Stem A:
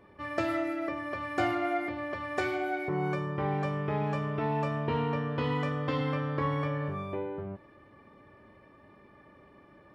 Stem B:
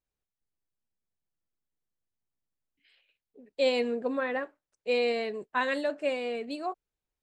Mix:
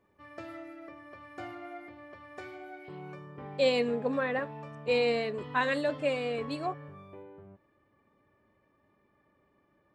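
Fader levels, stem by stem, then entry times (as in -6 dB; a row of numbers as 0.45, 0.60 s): -13.5, 0.0 dB; 0.00, 0.00 s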